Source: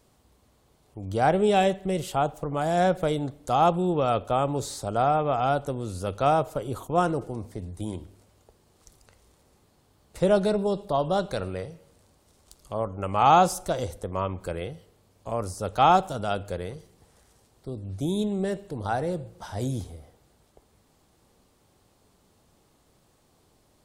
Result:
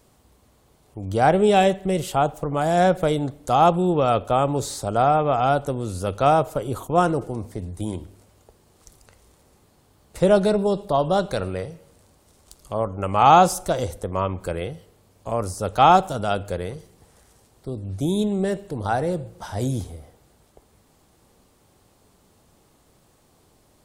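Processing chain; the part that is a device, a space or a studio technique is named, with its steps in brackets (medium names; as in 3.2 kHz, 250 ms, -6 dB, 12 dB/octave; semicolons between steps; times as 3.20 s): exciter from parts (in parallel at -13 dB: high-pass 2.9 kHz 12 dB/octave + saturation -39 dBFS, distortion -7 dB + high-pass 4.2 kHz); on the sum: trim +4.5 dB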